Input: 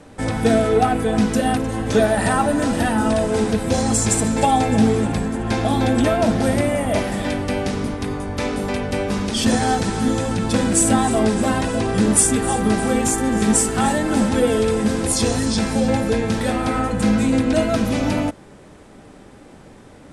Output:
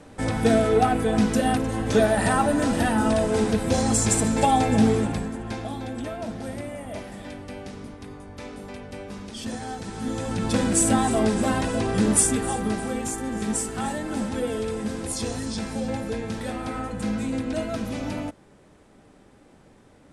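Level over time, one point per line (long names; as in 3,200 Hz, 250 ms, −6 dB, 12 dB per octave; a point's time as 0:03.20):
0:04.94 −3 dB
0:05.83 −15 dB
0:09.76 −15 dB
0:10.46 −4 dB
0:12.20 −4 dB
0:12.95 −10 dB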